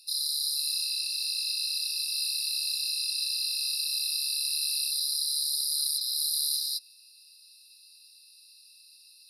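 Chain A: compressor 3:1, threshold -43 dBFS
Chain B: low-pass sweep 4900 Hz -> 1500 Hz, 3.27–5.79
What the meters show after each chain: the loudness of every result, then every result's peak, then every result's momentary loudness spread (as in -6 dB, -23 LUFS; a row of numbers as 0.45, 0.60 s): -38.5, -22.5 LUFS; -28.0, -12.5 dBFS; 14, 13 LU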